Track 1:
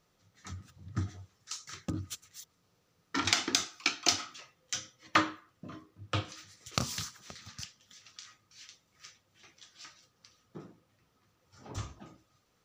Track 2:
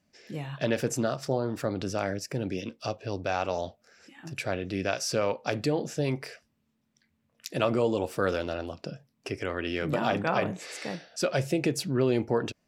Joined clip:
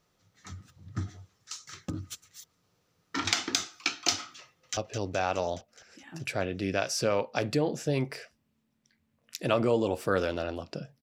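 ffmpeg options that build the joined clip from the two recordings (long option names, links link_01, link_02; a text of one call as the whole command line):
ffmpeg -i cue0.wav -i cue1.wav -filter_complex "[0:a]apad=whole_dur=11.02,atrim=end=11.02,atrim=end=4.772[link_01];[1:a]atrim=start=2.878:end=9.13[link_02];[link_01][link_02]acrossfade=duration=0.004:curve1=hsin:curve2=hsin,asplit=2[link_03][link_04];[link_04]afade=type=in:start_time=4.42:duration=0.01,afade=type=out:start_time=4.77:duration=0.01,aecho=0:1:210|420|630|840|1050|1260|1470|1680|1890|2100|2310:0.354813|0.248369|0.173859|0.121701|0.0851907|0.0596335|0.0417434|0.0292204|0.0204543|0.014318|0.0100226[link_05];[link_03][link_05]amix=inputs=2:normalize=0" out.wav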